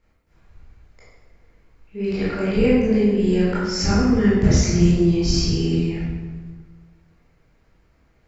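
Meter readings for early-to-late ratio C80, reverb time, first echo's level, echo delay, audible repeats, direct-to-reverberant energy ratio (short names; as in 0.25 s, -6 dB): 1.0 dB, 1.5 s, none, none, none, -10.0 dB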